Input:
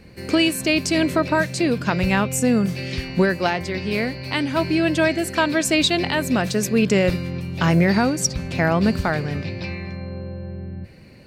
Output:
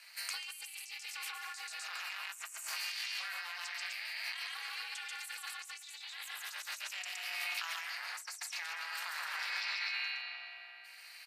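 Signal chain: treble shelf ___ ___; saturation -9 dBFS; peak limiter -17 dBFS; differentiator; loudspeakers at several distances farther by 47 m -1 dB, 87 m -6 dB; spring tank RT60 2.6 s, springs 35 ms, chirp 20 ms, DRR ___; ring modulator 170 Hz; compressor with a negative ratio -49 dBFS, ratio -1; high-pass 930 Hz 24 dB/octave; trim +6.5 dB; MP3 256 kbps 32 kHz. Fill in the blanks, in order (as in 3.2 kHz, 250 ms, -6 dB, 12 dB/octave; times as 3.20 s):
3.4 kHz, -7 dB, 3.5 dB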